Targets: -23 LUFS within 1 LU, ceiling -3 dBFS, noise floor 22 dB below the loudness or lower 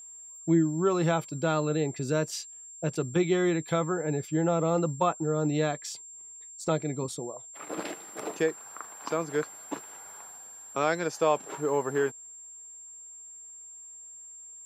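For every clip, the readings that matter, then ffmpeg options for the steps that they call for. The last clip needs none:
steady tone 7400 Hz; tone level -44 dBFS; loudness -29.5 LUFS; peak -13.0 dBFS; loudness target -23.0 LUFS
-> -af "bandreject=f=7.4k:w=30"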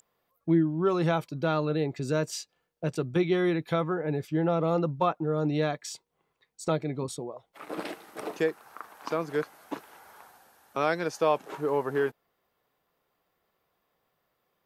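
steady tone none; loudness -29.0 LUFS; peak -13.0 dBFS; loudness target -23.0 LUFS
-> -af "volume=6dB"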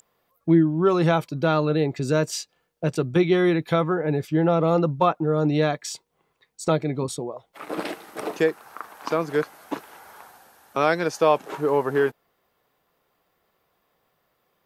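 loudness -23.0 LUFS; peak -7.0 dBFS; noise floor -72 dBFS

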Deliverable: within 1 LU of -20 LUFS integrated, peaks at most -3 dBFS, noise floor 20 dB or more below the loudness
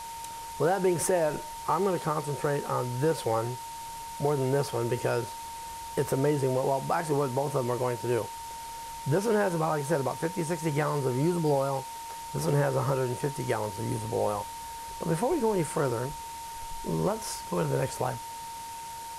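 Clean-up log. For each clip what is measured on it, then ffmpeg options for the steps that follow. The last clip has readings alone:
steady tone 920 Hz; tone level -38 dBFS; noise floor -40 dBFS; noise floor target -50 dBFS; loudness -30.0 LUFS; peak -15.5 dBFS; loudness target -20.0 LUFS
-> -af "bandreject=f=920:w=30"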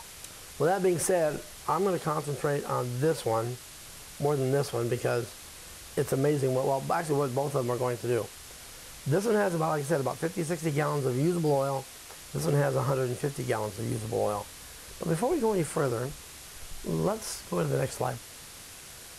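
steady tone none; noise floor -47 dBFS; noise floor target -50 dBFS
-> -af "afftdn=nr=6:nf=-47"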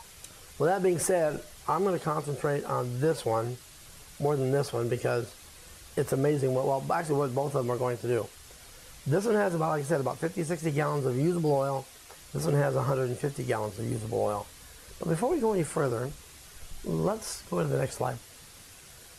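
noise floor -51 dBFS; loudness -29.5 LUFS; peak -15.5 dBFS; loudness target -20.0 LUFS
-> -af "volume=9.5dB"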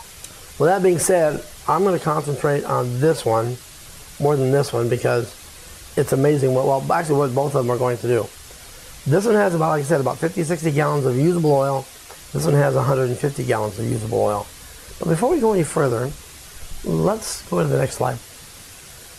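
loudness -20.0 LUFS; peak -6.0 dBFS; noise floor -41 dBFS

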